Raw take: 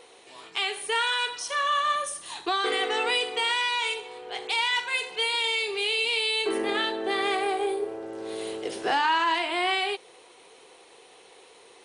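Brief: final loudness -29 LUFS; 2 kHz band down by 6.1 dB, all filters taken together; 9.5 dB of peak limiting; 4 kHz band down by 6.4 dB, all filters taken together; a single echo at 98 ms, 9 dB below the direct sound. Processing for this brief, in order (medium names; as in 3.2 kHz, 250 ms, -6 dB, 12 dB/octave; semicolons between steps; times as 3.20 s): peaking EQ 2 kHz -6 dB; peaking EQ 4 kHz -6 dB; peak limiter -25.5 dBFS; delay 98 ms -9 dB; trim +4.5 dB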